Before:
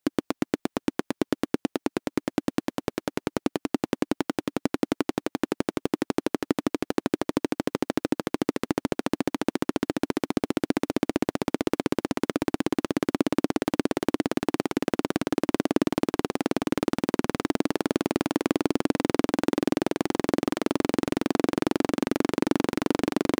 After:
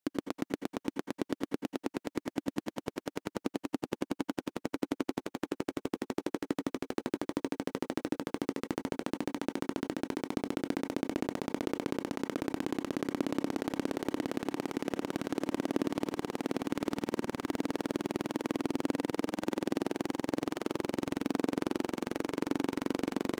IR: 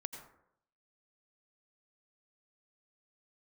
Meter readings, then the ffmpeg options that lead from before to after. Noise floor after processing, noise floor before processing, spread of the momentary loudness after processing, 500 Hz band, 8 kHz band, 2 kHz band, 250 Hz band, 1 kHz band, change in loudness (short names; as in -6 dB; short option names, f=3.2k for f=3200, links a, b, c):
under -85 dBFS, -81 dBFS, 4 LU, -8.0 dB, -8.0 dB, -8.0 dB, -8.0 dB, -8.0 dB, -8.0 dB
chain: -filter_complex "[1:a]atrim=start_sample=2205,afade=t=out:st=0.15:d=0.01,atrim=end_sample=7056[a];[0:a][a]afir=irnorm=-1:irlink=0,volume=-5.5dB"